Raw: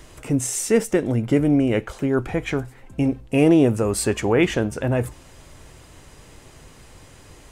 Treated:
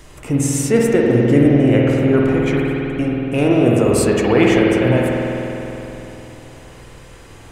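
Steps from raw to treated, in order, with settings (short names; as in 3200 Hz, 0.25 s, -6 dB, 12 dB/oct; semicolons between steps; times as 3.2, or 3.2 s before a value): 2.22–3.66 tube stage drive 11 dB, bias 0.35; spring tank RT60 3.5 s, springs 49 ms, chirp 50 ms, DRR -3 dB; gain +2 dB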